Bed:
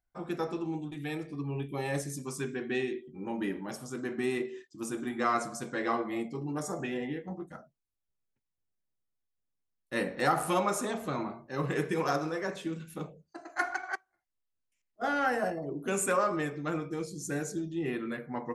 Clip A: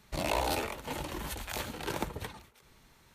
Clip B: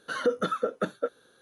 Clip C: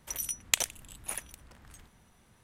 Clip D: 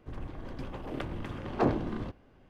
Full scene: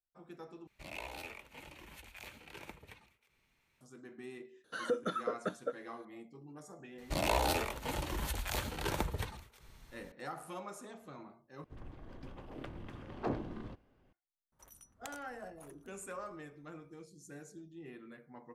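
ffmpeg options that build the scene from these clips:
ffmpeg -i bed.wav -i cue0.wav -i cue1.wav -i cue2.wav -i cue3.wav -filter_complex "[1:a]asplit=2[link_01][link_02];[0:a]volume=-16.5dB[link_03];[link_01]equalizer=frequency=2400:width_type=o:width=0.61:gain=11.5[link_04];[link_02]asubboost=boost=3:cutoff=130[link_05];[3:a]highshelf=frequency=1700:width_type=q:width=1.5:gain=-8[link_06];[link_03]asplit=3[link_07][link_08][link_09];[link_07]atrim=end=0.674[link_10];[link_04]atrim=end=3.14,asetpts=PTS-STARTPTS,volume=-17dB[link_11];[link_08]atrim=start=3.806:end=11.644[link_12];[4:a]atrim=end=2.49,asetpts=PTS-STARTPTS,volume=-9.5dB[link_13];[link_09]atrim=start=14.126[link_14];[2:a]atrim=end=1.41,asetpts=PTS-STARTPTS,volume=-8dB,afade=type=in:duration=0.004:curve=hsin,afade=type=out:start_time=1.406:duration=0.004:curve=hsin,adelay=4640[link_15];[link_05]atrim=end=3.14,asetpts=PTS-STARTPTS,volume=-0.5dB,afade=type=in:duration=0.004:curve=hsin,afade=type=out:start_time=3.136:duration=0.004:curve=hsin,adelay=307818S[link_16];[link_06]atrim=end=2.43,asetpts=PTS-STARTPTS,volume=-15.5dB,afade=type=in:duration=0.004:curve=hsin,afade=type=out:start_time=2.426:duration=0.004:curve=hsin,adelay=14520[link_17];[link_10][link_11]acrossfade=duration=0.004:curve1=hsin:curve2=hsin[link_18];[link_18][link_12]acrossfade=duration=0.004:curve1=hsin:curve2=hsin[link_19];[link_19][link_13]acrossfade=duration=0.004:curve1=hsin:curve2=hsin[link_20];[link_20][link_14]acrossfade=duration=0.004:curve1=hsin:curve2=hsin[link_21];[link_21][link_15][link_16][link_17]amix=inputs=4:normalize=0" out.wav

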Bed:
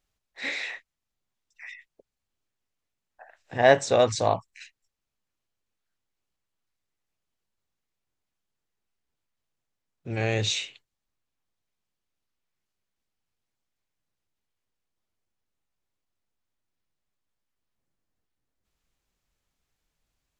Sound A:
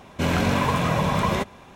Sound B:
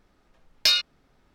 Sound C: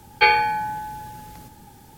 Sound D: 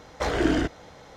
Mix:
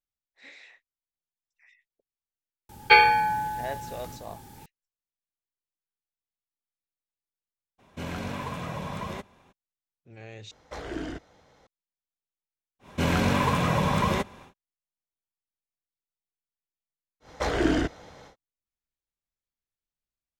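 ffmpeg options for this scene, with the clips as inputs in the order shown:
ffmpeg -i bed.wav -i cue0.wav -i cue1.wav -i cue2.wav -i cue3.wav -filter_complex "[1:a]asplit=2[link_01][link_02];[4:a]asplit=2[link_03][link_04];[0:a]volume=-18dB[link_05];[link_02]bandreject=frequency=670:width=15[link_06];[link_05]asplit=2[link_07][link_08];[link_07]atrim=end=10.514[link_09];[link_03]atrim=end=1.16,asetpts=PTS-STARTPTS,volume=-12dB[link_10];[link_08]atrim=start=11.666[link_11];[3:a]atrim=end=1.97,asetpts=PTS-STARTPTS,afade=type=in:duration=0.004:curve=hsin,afade=type=out:start_time=1.966:duration=0.004:curve=hsin,adelay=2690[link_12];[link_01]atrim=end=1.75,asetpts=PTS-STARTPTS,volume=-12.5dB,afade=type=in:duration=0.02,afade=type=out:start_time=1.73:duration=0.02,adelay=343098S[link_13];[link_06]atrim=end=1.75,asetpts=PTS-STARTPTS,volume=-2dB,afade=type=in:duration=0.1,afade=type=out:start_time=1.65:duration=0.1,adelay=12790[link_14];[link_04]atrim=end=1.16,asetpts=PTS-STARTPTS,volume=-1dB,afade=type=in:duration=0.1,afade=type=out:start_time=1.06:duration=0.1,adelay=17200[link_15];[link_09][link_10]acrossfade=duration=0.004:curve1=hsin:curve2=hsin[link_16];[link_16][link_11]acrossfade=duration=0.004:curve1=hsin:curve2=hsin[link_17];[link_17][link_12][link_13][link_14][link_15]amix=inputs=5:normalize=0" out.wav

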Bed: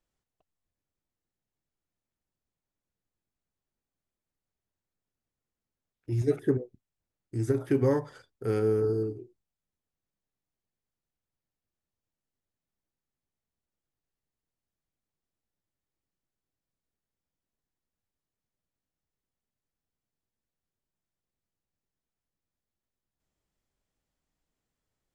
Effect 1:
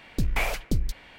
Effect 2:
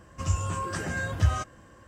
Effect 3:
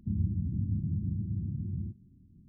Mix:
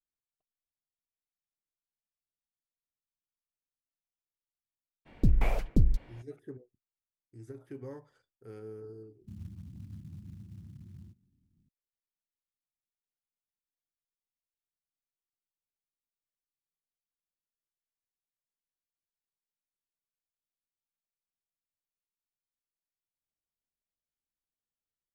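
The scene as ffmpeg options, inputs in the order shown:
ffmpeg -i bed.wav -i cue0.wav -i cue1.wav -i cue2.wav -filter_complex "[0:a]volume=-19dB[link_01];[1:a]tiltshelf=frequency=870:gain=9[link_02];[3:a]acrusher=bits=7:mode=log:mix=0:aa=0.000001[link_03];[link_02]atrim=end=1.18,asetpts=PTS-STARTPTS,volume=-6.5dB,afade=type=in:duration=0.02,afade=type=out:start_time=1.16:duration=0.02,adelay=222705S[link_04];[link_03]atrim=end=2.48,asetpts=PTS-STARTPTS,volume=-14.5dB,afade=type=in:duration=0.004:curve=hsin,afade=type=out:start_time=2.476:duration=0.004:curve=hsin,adelay=9210[link_05];[link_01][link_04][link_05]amix=inputs=3:normalize=0" out.wav

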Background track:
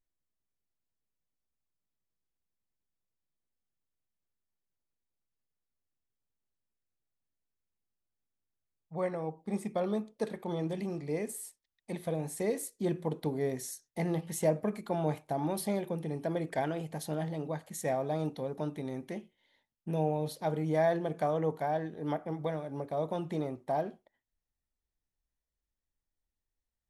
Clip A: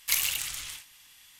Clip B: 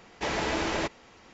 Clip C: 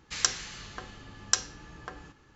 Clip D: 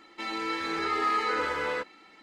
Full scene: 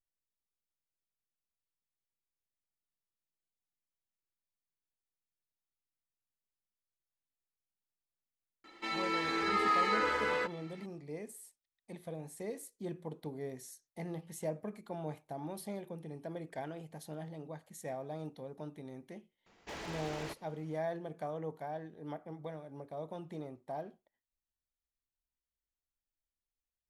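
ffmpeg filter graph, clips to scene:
ffmpeg -i bed.wav -i cue0.wav -i cue1.wav -i cue2.wav -i cue3.wav -filter_complex "[0:a]volume=-9.5dB[link_01];[2:a]aeval=exprs='0.0562*(abs(mod(val(0)/0.0562+3,4)-2)-1)':channel_layout=same[link_02];[4:a]atrim=end=2.22,asetpts=PTS-STARTPTS,volume=-2.5dB,afade=type=in:duration=0.004:curve=hsin,afade=type=out:start_time=2.216:duration=0.004:curve=hsin,adelay=8640[link_03];[link_02]atrim=end=1.33,asetpts=PTS-STARTPTS,volume=-13dB,afade=type=in:duration=0.004:curve=hsin,afade=type=out:start_time=1.326:duration=0.004:curve=hsin,adelay=19460[link_04];[link_01][link_03][link_04]amix=inputs=3:normalize=0" out.wav

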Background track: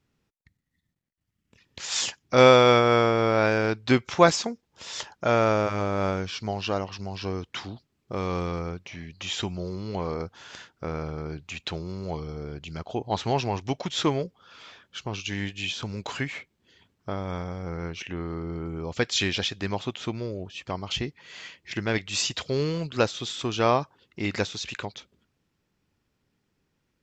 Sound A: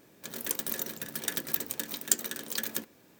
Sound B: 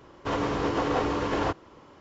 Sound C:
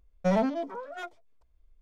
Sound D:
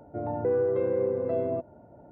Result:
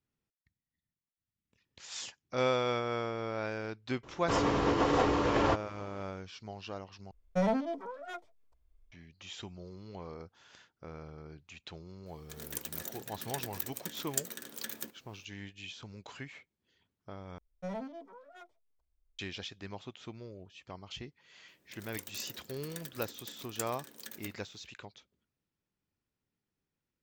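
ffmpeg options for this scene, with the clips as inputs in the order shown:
ffmpeg -i bed.wav -i cue0.wav -i cue1.wav -i cue2.wav -filter_complex "[3:a]asplit=2[link_01][link_02];[1:a]asplit=2[link_03][link_04];[0:a]volume=-14.5dB[link_05];[2:a]bandreject=frequency=1500:width=29[link_06];[link_05]asplit=3[link_07][link_08][link_09];[link_07]atrim=end=7.114[link_10];[link_01]atrim=end=1.81,asetpts=PTS-STARTPTS,volume=-4dB[link_11];[link_08]atrim=start=8.916:end=17.384[link_12];[link_02]atrim=end=1.81,asetpts=PTS-STARTPTS,volume=-14.5dB[link_13];[link_09]atrim=start=19.186[link_14];[link_06]atrim=end=2,asetpts=PTS-STARTPTS,volume=-1dB,afade=type=in:duration=0.004:curve=hsin,afade=type=out:start_time=1.996:duration=0.004:curve=hsin,adelay=4030[link_15];[link_03]atrim=end=3.19,asetpts=PTS-STARTPTS,volume=-7.5dB,afade=type=in:duration=0.004:curve=hsin,afade=type=out:start_time=3.186:duration=0.004:curve=hsin,adelay=12060[link_16];[link_04]atrim=end=3.19,asetpts=PTS-STARTPTS,volume=-13.5dB,afade=type=in:duration=0.004:curve=hsin,afade=type=out:start_time=3.186:duration=0.004:curve=hsin,adelay=947268S[link_17];[link_10][link_11]acrossfade=duration=0.004:curve1=hsin:curve2=hsin[link_18];[link_18][link_12]acrossfade=duration=0.004:curve1=hsin:curve2=hsin[link_19];[link_19][link_13]acrossfade=duration=0.004:curve1=hsin:curve2=hsin[link_20];[link_20][link_14]acrossfade=duration=0.004:curve1=hsin:curve2=hsin[link_21];[link_21][link_15][link_16][link_17]amix=inputs=4:normalize=0" out.wav

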